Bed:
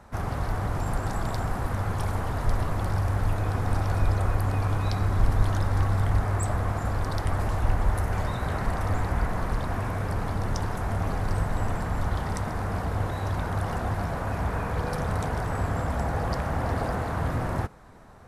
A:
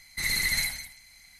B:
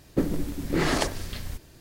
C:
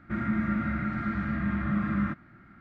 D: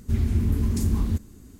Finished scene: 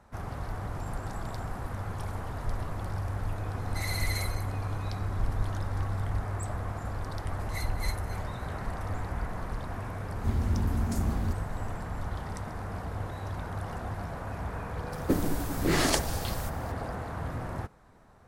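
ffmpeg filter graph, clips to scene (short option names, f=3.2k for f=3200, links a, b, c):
-filter_complex "[1:a]asplit=2[a][b];[0:a]volume=-7.5dB[c];[b]aeval=exprs='val(0)*pow(10,-23*(0.5-0.5*cos(2*PI*3.6*n/s))/20)':c=same[d];[2:a]highshelf=f=5.9k:g=9[e];[a]atrim=end=1.39,asetpts=PTS-STARTPTS,volume=-9dB,afade=t=in:d=0.004:c=hsin,afade=t=out:st=1.386:d=0.004:c=hsin,adelay=3580[f];[d]atrim=end=1.39,asetpts=PTS-STARTPTS,volume=-10dB,afade=t=in:d=0.004:c=hsin,afade=t=out:st=1.386:d=0.004:c=hsin,adelay=7310[g];[4:a]atrim=end=1.59,asetpts=PTS-STARTPTS,volume=-6dB,afade=t=in:d=0.004:c=hsin,afade=t=out:st=1.586:d=0.004:c=hsin,adelay=10150[h];[e]atrim=end=1.8,asetpts=PTS-STARTPTS,volume=-2dB,afade=t=in:d=0.004:c=hsin,afade=t=out:st=1.796:d=0.004:c=hsin,adelay=657972S[i];[c][f][g][h][i]amix=inputs=5:normalize=0"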